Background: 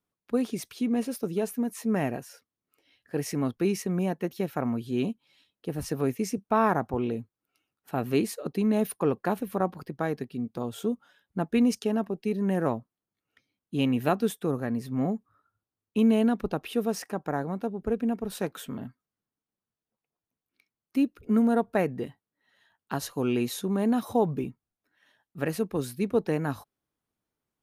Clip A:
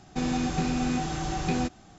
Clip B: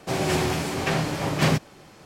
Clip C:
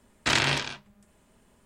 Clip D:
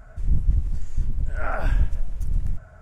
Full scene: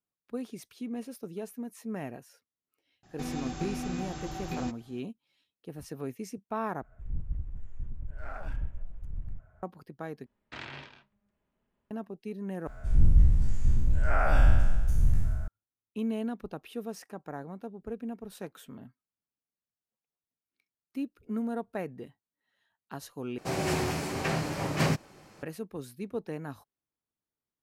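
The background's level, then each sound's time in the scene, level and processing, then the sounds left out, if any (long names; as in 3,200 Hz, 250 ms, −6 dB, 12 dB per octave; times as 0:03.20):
background −10 dB
0:03.03: mix in A −8.5 dB
0:06.82: overwrite with D −13.5 dB + adaptive Wiener filter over 9 samples
0:10.26: overwrite with C −17.5 dB + low-pass filter 3,100 Hz
0:12.67: overwrite with D −2.5 dB + peak hold with a decay on every bin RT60 1.34 s
0:23.38: overwrite with B −5.5 dB + parametric band 3,400 Hz −5 dB 0.33 octaves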